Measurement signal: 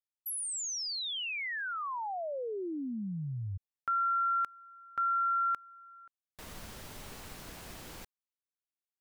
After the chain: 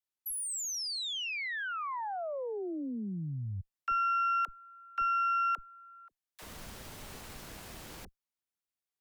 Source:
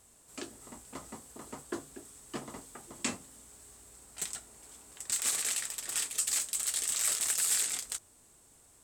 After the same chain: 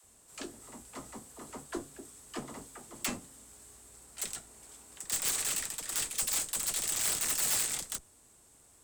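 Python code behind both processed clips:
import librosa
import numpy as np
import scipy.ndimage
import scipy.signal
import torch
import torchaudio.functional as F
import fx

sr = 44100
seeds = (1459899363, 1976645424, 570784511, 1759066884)

y = (np.mod(10.0 ** (22.0 / 20.0) * x + 1.0, 2.0) - 1.0) / 10.0 ** (22.0 / 20.0)
y = fx.cheby_harmonics(y, sr, harmonics=(4,), levels_db=(-19,), full_scale_db=-22.0)
y = fx.dispersion(y, sr, late='lows', ms=41.0, hz=420.0)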